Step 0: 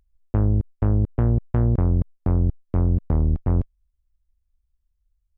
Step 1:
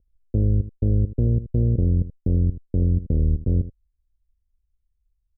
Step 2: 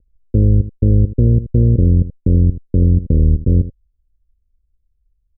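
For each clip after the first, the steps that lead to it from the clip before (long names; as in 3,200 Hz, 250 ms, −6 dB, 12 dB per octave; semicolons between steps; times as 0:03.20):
elliptic low-pass filter 510 Hz, stop band 80 dB; single-tap delay 79 ms −14 dB
elliptic low-pass filter 560 Hz, stop band 40 dB; level +8.5 dB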